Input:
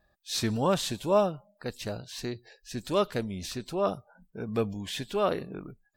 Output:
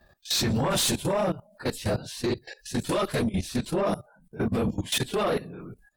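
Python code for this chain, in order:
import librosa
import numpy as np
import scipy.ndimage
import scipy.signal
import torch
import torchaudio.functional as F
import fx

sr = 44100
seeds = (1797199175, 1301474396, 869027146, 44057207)

y = fx.phase_scramble(x, sr, seeds[0], window_ms=50)
y = fx.level_steps(y, sr, step_db=18)
y = fx.peak_eq(y, sr, hz=10000.0, db=fx.steps((0.0, -3.0), (0.7, 9.5)), octaves=0.42)
y = fx.fold_sine(y, sr, drive_db=8, ceiling_db=-22.5)
y = F.gain(torch.from_numpy(y), 2.0).numpy()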